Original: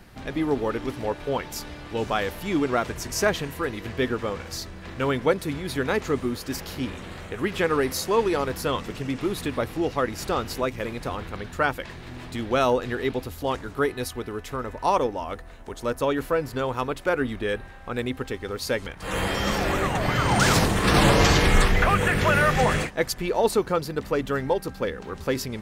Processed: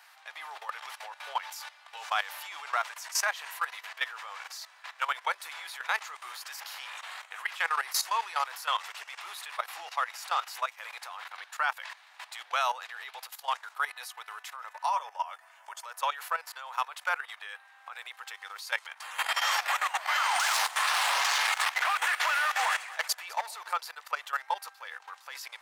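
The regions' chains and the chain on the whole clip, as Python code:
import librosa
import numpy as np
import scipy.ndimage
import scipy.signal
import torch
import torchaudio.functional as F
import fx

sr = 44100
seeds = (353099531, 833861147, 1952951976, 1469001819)

y = fx.chain(x, sr, fx.notch(hz=3900.0, q=5.2),
    fx.comb(ms=7.2, depth=0.3),
    fx.small_body(hz=(600.0, 960.0, 3500.0), ring_ms=85, db=7), at=(14.88, 15.85))
y = fx.chain(y, sr, fx.overload_stage(gain_db=18.5),
    fx.echo_alternate(ms=104, hz=960.0, feedback_pct=61, wet_db=-12), at=(19.83, 23.73))
y = scipy.signal.sosfilt(scipy.signal.butter(6, 800.0, 'highpass', fs=sr, output='sos'), y)
y = fx.level_steps(y, sr, step_db=15)
y = F.gain(torch.from_numpy(y), 3.0).numpy()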